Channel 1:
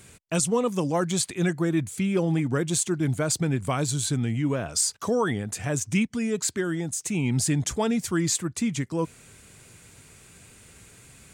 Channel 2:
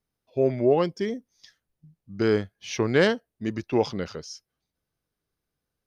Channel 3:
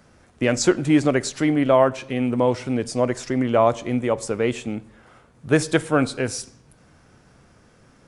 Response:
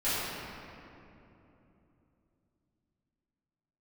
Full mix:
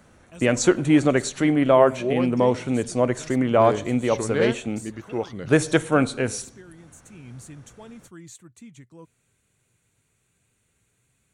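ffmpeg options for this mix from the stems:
-filter_complex "[0:a]equalizer=f=120:w=6.3:g=5,volume=-19dB[a];[1:a]adelay=1400,volume=-5dB[b];[2:a]volume=0dB[c];[a][b][c]amix=inputs=3:normalize=0,bandreject=f=5k:w=5.1"

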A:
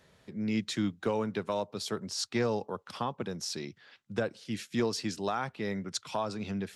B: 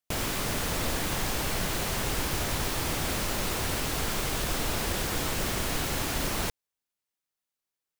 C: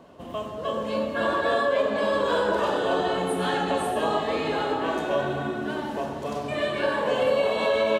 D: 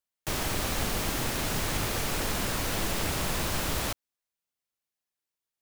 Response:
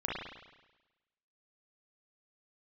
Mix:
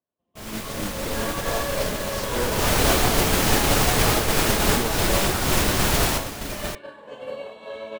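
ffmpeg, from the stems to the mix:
-filter_complex "[0:a]lowshelf=f=340:g=3.5,volume=-9dB,asplit=2[a][b];[1:a]adelay=250,volume=-2.5dB[c];[2:a]volume=-10dB[d];[3:a]adelay=2250,volume=1dB[e];[b]apad=whole_len=351067[f];[e][f]sidechaincompress=threshold=-39dB:ratio=8:attack=49:release=266[g];[a][c][d][g]amix=inputs=4:normalize=0,agate=range=-33dB:threshold=-22dB:ratio=3:detection=peak,dynaudnorm=f=290:g=3:m=11dB"

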